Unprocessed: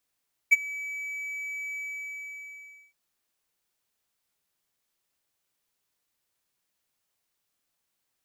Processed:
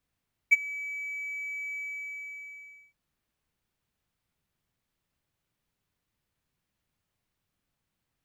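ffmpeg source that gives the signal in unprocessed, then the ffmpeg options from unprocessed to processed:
-f lavfi -i "aevalsrc='0.335*(1-4*abs(mod(2290*t+0.25,1)-0.5))':duration=2.42:sample_rate=44100,afade=type=in:duration=0.019,afade=type=out:start_time=0.019:duration=0.026:silence=0.0891,afade=type=out:start_time=1.25:duration=1.17"
-af "bass=frequency=250:gain=14,treble=frequency=4000:gain=-8"

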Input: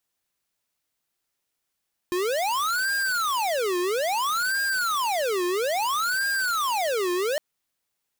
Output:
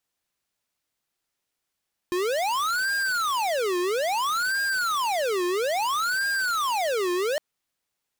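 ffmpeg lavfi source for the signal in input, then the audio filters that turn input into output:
-f lavfi -i "aevalsrc='0.0562*(2*lt(mod((981.5*t-628.5/(2*PI*0.6)*sin(2*PI*0.6*t)),1),0.5)-1)':duration=5.26:sample_rate=44100"
-af "highshelf=frequency=9800:gain=-5"

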